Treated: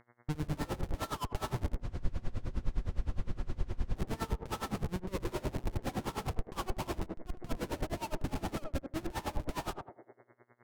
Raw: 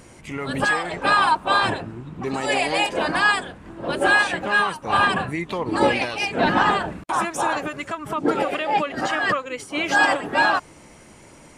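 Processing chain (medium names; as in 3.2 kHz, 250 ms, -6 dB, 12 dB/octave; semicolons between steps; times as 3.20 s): dynamic bell 100 Hz, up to +4 dB, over -43 dBFS, Q 1.3; low-pass 1.2 kHz 24 dB/octave; Schmitt trigger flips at -26.5 dBFS; on a send: band-passed feedback delay 86 ms, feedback 50%, band-pass 420 Hz, level -3.5 dB; on the sum: compression 4:1, threshold -28 dBFS, peak gain reduction 6.5 dB; level-controlled noise filter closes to 950 Hz, open at -27.5 dBFS; speed mistake 44.1 kHz file played as 48 kHz; reverse; upward compressor, threshold -40 dBFS; reverse; bass shelf 160 Hz +10.5 dB; mains buzz 120 Hz, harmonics 18, -56 dBFS -2 dB/octave; spectral freeze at 1.83 s, 2.13 s; logarithmic tremolo 9.7 Hz, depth 22 dB; trim -5 dB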